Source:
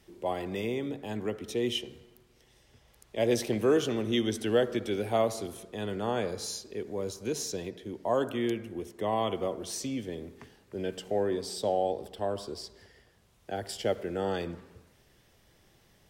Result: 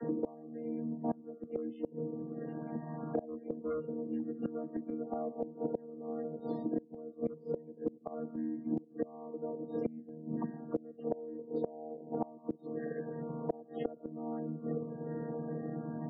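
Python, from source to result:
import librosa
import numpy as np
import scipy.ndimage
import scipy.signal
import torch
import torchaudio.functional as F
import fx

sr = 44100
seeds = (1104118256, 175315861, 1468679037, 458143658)

p1 = fx.chord_vocoder(x, sr, chord='bare fifth', root=51)
p2 = scipy.signal.sosfilt(scipy.signal.butter(2, 1700.0, 'lowpass', fs=sr, output='sos'), p1)
p3 = fx.peak_eq(p2, sr, hz=400.0, db=5.5, octaves=0.88)
p4 = fx.rider(p3, sr, range_db=4, speed_s=0.5)
p5 = p3 + (p4 * librosa.db_to_amplitude(0.0))
p6 = np.clip(p5, -10.0 ** (-12.5 / 20.0), 10.0 ** (-12.5 / 20.0))
p7 = fx.spec_topn(p6, sr, count=32)
p8 = fx.gate_flip(p7, sr, shuts_db=-22.0, range_db=-27)
p9 = fx.band_squash(p8, sr, depth_pct=100)
y = p9 * librosa.db_to_amplitude(4.0)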